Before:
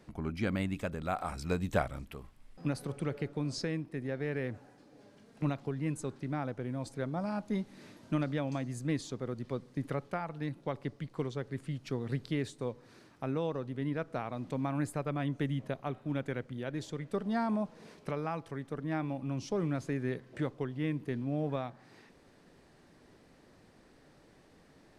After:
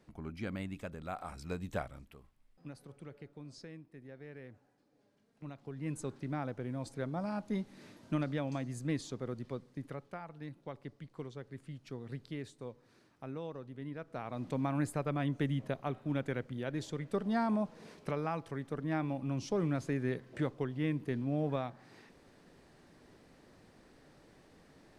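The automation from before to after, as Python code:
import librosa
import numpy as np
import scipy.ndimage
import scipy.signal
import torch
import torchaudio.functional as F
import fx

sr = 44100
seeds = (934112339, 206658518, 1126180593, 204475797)

y = fx.gain(x, sr, db=fx.line((1.73, -7.0), (2.62, -14.5), (5.46, -14.5), (5.97, -2.0), (9.34, -2.0), (9.95, -8.5), (14.02, -8.5), (14.42, 0.0)))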